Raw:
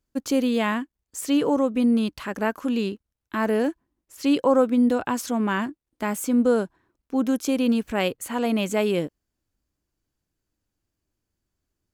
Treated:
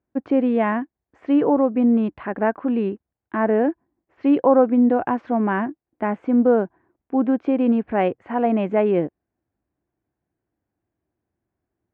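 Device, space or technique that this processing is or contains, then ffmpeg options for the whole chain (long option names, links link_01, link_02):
bass cabinet: -af "highpass=82,equalizer=frequency=350:width_type=q:width=4:gain=4,equalizer=frequency=730:width_type=q:width=4:gain=7,equalizer=frequency=1300:width_type=q:width=4:gain=-4,lowpass=frequency=2000:width=0.5412,lowpass=frequency=2000:width=1.3066,volume=2.5dB"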